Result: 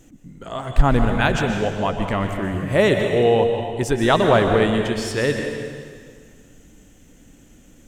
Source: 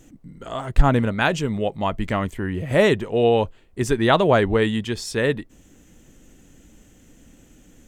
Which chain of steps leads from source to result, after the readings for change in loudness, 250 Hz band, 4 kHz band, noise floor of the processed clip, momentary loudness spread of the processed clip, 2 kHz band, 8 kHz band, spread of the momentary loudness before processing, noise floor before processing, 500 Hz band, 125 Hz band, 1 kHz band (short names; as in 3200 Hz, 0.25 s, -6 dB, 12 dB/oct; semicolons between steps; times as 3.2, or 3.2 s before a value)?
+1.5 dB, +1.5 dB, +1.5 dB, -50 dBFS, 12 LU, +1.5 dB, +1.5 dB, 11 LU, -53 dBFS, +2.0 dB, +1.5 dB, +1.5 dB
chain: plate-style reverb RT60 1.9 s, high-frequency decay 0.95×, pre-delay 0.11 s, DRR 4 dB